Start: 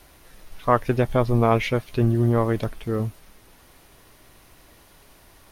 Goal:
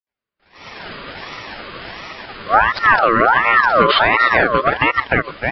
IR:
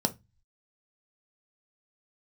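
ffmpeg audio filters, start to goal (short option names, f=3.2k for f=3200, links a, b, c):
-filter_complex "[0:a]areverse,asplit=2[a][b];[b]adelay=301,lowpass=f=2k:p=1,volume=-4dB,asplit=2[c][d];[d]adelay=301,lowpass=f=2k:p=1,volume=0.18,asplit=2[e][f];[f]adelay=301,lowpass=f=2k:p=1,volume=0.18[g];[a][c][e][g]amix=inputs=4:normalize=0,dynaudnorm=f=340:g=3:m=8.5dB,afftfilt=real='re*between(b*sr/4096,180,4200)':imag='im*between(b*sr/4096,180,4200)':win_size=4096:overlap=0.75,agate=range=-48dB:threshold=-47dB:ratio=16:detection=peak,acompressor=threshold=-21dB:ratio=12,flanger=delay=4.6:depth=5.6:regen=9:speed=1:shape=sinusoidal,alimiter=level_in=20.5dB:limit=-1dB:release=50:level=0:latency=1,aeval=exprs='val(0)*sin(2*PI*1200*n/s+1200*0.35/1.4*sin(2*PI*1.4*n/s))':c=same"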